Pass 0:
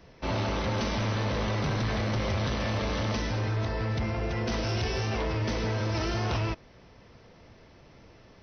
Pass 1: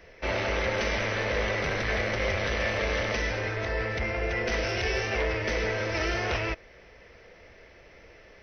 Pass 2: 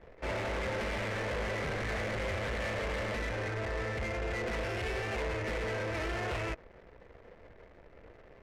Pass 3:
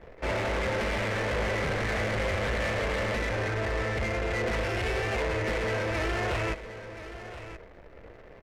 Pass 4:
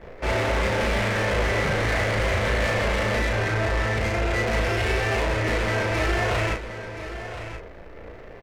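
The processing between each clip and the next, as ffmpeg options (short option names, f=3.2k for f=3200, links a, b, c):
-af "equalizer=f=125:t=o:w=1:g=-11,equalizer=f=250:t=o:w=1:g=-8,equalizer=f=500:t=o:w=1:g=5,equalizer=f=1k:t=o:w=1:g=-7,equalizer=f=2k:t=o:w=1:g=9,equalizer=f=4k:t=o:w=1:g=-5,volume=3dB"
-af "acrusher=bits=9:dc=4:mix=0:aa=0.000001,asoftclip=type=tanh:threshold=-30.5dB,adynamicsmooth=sensitivity=5.5:basefreq=1.1k"
-af "aecho=1:1:1026:0.224,volume=5.5dB"
-filter_complex "[0:a]asplit=2[a][b];[b]asoftclip=type=tanh:threshold=-33dB,volume=-4.5dB[c];[a][c]amix=inputs=2:normalize=0,asplit=2[d][e];[e]adelay=35,volume=-3dB[f];[d][f]amix=inputs=2:normalize=0,volume=1.5dB"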